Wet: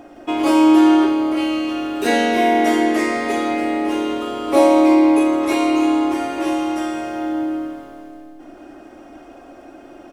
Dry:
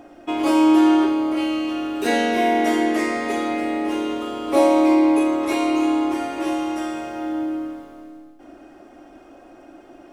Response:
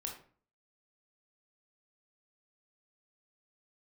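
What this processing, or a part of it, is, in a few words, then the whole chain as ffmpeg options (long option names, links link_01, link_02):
ducked delay: -filter_complex "[0:a]asplit=3[link_01][link_02][link_03];[link_02]adelay=165,volume=-3dB[link_04];[link_03]apad=whole_len=453867[link_05];[link_04][link_05]sidechaincompress=threshold=-36dB:ratio=8:attack=16:release=758[link_06];[link_01][link_06]amix=inputs=2:normalize=0,volume=3dB"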